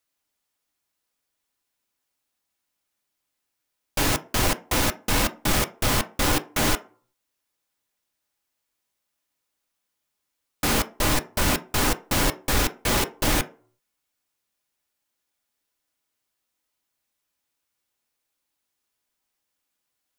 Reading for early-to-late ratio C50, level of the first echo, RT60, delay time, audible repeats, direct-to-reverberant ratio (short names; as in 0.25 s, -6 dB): 19.0 dB, none, 0.45 s, none, none, 6.5 dB